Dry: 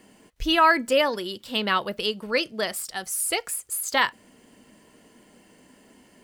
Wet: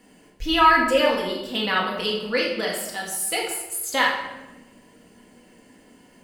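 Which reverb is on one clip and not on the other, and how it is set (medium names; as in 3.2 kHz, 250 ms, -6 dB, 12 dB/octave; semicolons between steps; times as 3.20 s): simulated room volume 520 m³, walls mixed, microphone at 1.9 m; trim -3 dB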